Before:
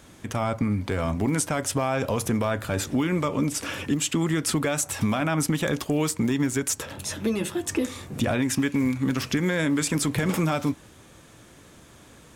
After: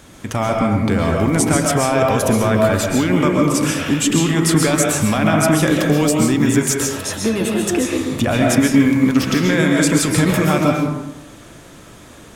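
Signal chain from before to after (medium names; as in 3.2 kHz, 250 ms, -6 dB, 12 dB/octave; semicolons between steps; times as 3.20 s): algorithmic reverb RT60 0.97 s, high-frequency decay 0.5×, pre-delay 95 ms, DRR -0.5 dB; trim +6.5 dB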